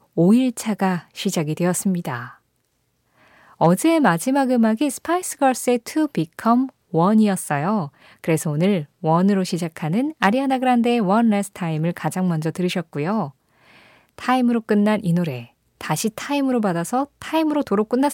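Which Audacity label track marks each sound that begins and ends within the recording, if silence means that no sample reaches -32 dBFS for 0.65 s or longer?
3.610000	13.290000	sound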